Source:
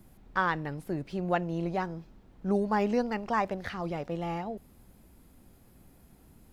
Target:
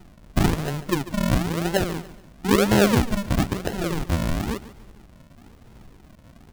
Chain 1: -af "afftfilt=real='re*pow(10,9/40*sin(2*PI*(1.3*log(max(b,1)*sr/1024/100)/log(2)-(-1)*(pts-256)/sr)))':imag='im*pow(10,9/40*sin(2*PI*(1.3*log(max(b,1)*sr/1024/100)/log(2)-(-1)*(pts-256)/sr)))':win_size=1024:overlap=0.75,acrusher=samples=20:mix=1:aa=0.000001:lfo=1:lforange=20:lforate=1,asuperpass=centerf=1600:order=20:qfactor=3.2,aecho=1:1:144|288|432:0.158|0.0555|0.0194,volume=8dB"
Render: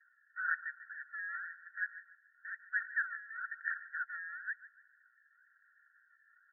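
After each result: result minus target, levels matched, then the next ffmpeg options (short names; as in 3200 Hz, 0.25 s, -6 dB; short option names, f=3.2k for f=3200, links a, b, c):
2000 Hz band +12.5 dB; decimation with a swept rate: distortion -13 dB
-af "afftfilt=real='re*pow(10,9/40*sin(2*PI*(1.3*log(max(b,1)*sr/1024/100)/log(2)-(-1)*(pts-256)/sr)))':imag='im*pow(10,9/40*sin(2*PI*(1.3*log(max(b,1)*sr/1024/100)/log(2)-(-1)*(pts-256)/sr)))':win_size=1024:overlap=0.75,acrusher=samples=20:mix=1:aa=0.000001:lfo=1:lforange=20:lforate=1,aecho=1:1:144|288|432:0.158|0.0555|0.0194,volume=8dB"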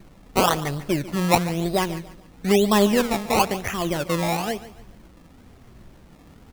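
decimation with a swept rate: distortion -13 dB
-af "afftfilt=real='re*pow(10,9/40*sin(2*PI*(1.3*log(max(b,1)*sr/1024/100)/log(2)-(-1)*(pts-256)/sr)))':imag='im*pow(10,9/40*sin(2*PI*(1.3*log(max(b,1)*sr/1024/100)/log(2)-(-1)*(pts-256)/sr)))':win_size=1024:overlap=0.75,acrusher=samples=74:mix=1:aa=0.000001:lfo=1:lforange=74:lforate=1,aecho=1:1:144|288|432:0.158|0.0555|0.0194,volume=8dB"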